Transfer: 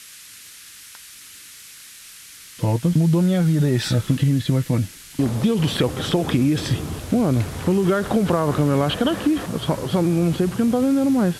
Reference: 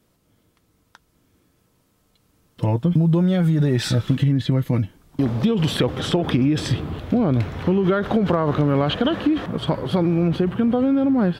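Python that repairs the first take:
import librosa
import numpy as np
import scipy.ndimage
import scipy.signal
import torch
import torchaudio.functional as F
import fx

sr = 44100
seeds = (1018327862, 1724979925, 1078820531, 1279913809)

y = fx.fix_declick_ar(x, sr, threshold=6.5)
y = fx.noise_reduce(y, sr, print_start_s=0.38, print_end_s=0.88, reduce_db=21.0)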